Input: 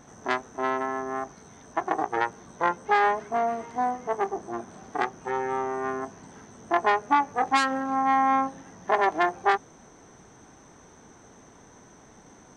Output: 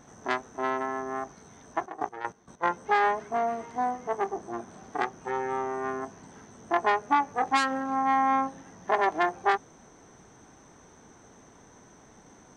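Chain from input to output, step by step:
0:01.81–0:02.62: gate pattern "..x..x..x" 194 BPM −12 dB
level −2 dB

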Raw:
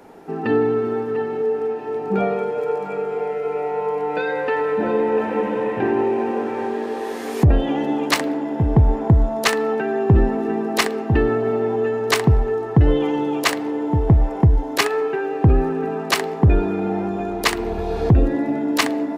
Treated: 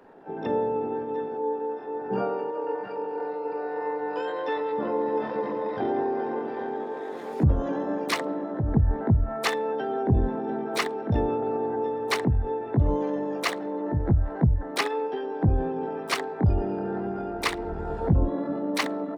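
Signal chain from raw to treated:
spectral envelope exaggerated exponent 1.5
pitch-shifted copies added −7 semitones −12 dB, +3 semitones −15 dB, +12 semitones −6 dB
level −8.5 dB

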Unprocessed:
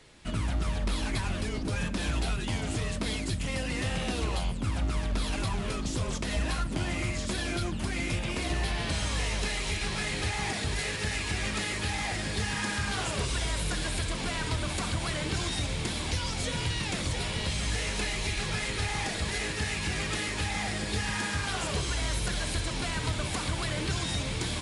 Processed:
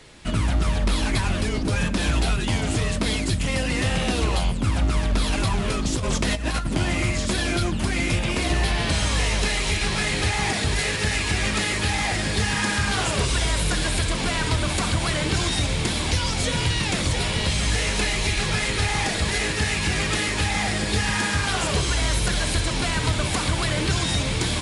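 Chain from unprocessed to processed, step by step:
0:05.92–0:06.69: compressor whose output falls as the input rises −31 dBFS, ratio −0.5
hard clipping −21 dBFS, distortion −56 dB
level +8 dB

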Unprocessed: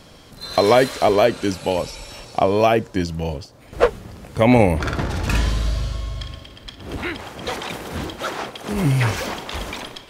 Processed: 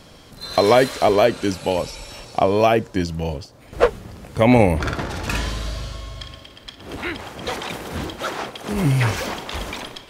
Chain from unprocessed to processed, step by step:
0:04.93–0:07.07: low-shelf EQ 200 Hz −7.5 dB

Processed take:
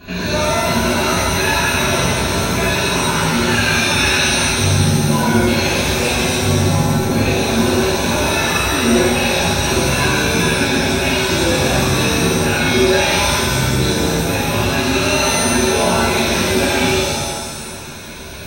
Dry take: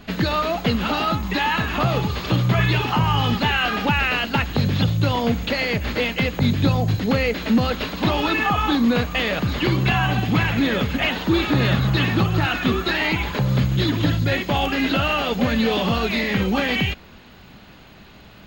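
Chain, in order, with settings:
EQ curve with evenly spaced ripples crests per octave 1.5, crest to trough 12 dB
hard clipping −11.5 dBFS, distortion −19 dB
downward compressor 2 to 1, threshold −32 dBFS, peak gain reduction 10 dB
reverb with rising layers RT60 1.5 s, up +7 semitones, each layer −2 dB, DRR −11.5 dB
level −2 dB

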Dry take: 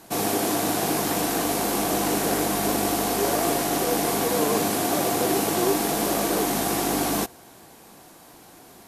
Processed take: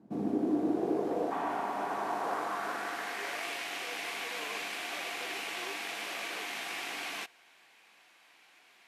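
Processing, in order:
band-pass filter sweep 220 Hz → 2,400 Hz, 0:00.11–0:03.47
healed spectral selection 0:01.34–0:02.16, 320–3,600 Hz after

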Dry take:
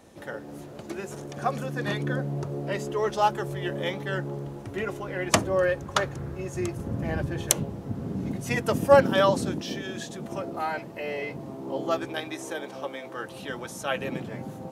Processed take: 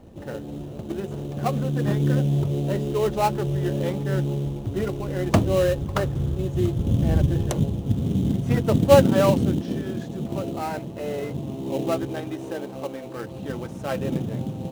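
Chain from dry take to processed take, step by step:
spectral tilt −3.5 dB per octave
in parallel at −4.5 dB: sample-rate reduction 3,400 Hz, jitter 20%
on the sum: level −4 dB

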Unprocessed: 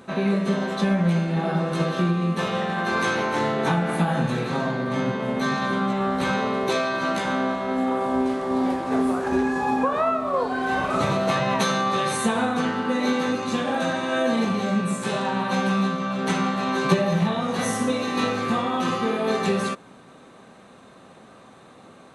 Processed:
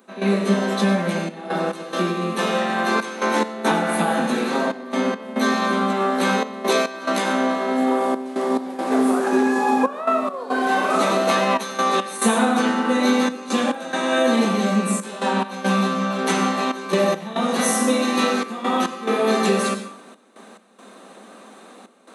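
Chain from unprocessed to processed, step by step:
on a send at −9.5 dB: convolution reverb RT60 0.45 s, pre-delay 82 ms
on the sum: gate pattern ".xxxxx.x" 70 BPM −12 dB
elliptic high-pass filter 200 Hz
high-shelf EQ 8,800 Hz +12 dB
level +4.5 dB

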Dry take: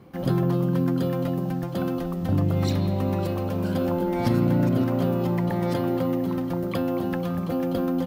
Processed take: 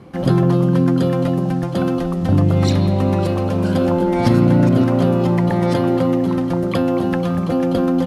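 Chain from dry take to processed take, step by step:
low-pass filter 11,000 Hz 24 dB per octave
level +8 dB

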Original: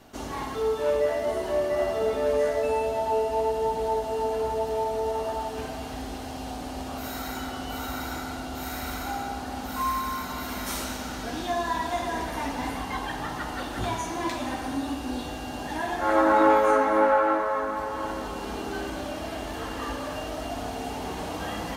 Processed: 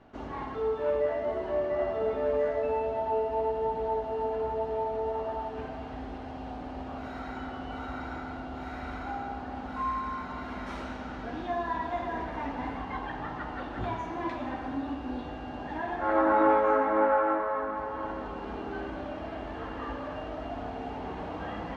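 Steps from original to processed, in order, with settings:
low-pass filter 2,100 Hz 12 dB per octave
level −3.5 dB

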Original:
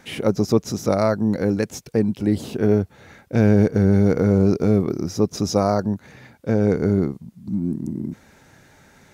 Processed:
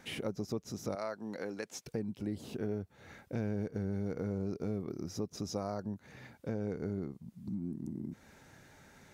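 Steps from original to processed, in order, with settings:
0:00.95–0:01.85: meter weighting curve A
downward compressor 2.5 to 1, threshold −32 dBFS, peak gain reduction 14 dB
level −7 dB

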